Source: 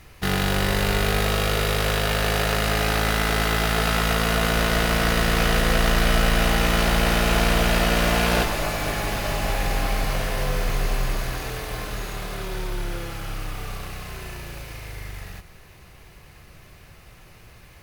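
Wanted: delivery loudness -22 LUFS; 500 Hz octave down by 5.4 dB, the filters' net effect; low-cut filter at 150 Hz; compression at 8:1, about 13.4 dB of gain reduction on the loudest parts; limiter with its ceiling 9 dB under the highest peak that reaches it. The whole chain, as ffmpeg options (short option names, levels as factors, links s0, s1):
-af "highpass=150,equalizer=f=500:t=o:g=-7,acompressor=threshold=0.02:ratio=8,volume=5.96,alimiter=limit=0.282:level=0:latency=1"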